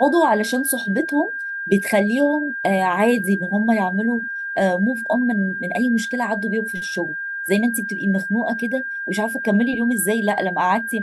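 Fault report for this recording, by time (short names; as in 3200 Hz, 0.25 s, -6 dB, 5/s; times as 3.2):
tone 1600 Hz -25 dBFS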